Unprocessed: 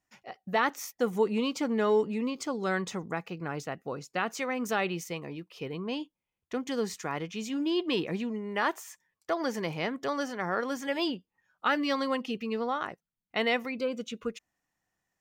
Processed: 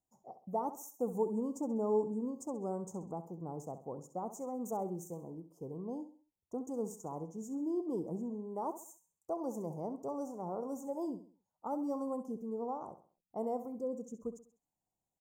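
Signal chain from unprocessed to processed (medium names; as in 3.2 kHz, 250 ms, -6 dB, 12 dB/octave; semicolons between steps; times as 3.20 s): elliptic band-stop 910–7000 Hz, stop band 40 dB; feedback delay 66 ms, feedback 37%, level -12 dB; trim -6 dB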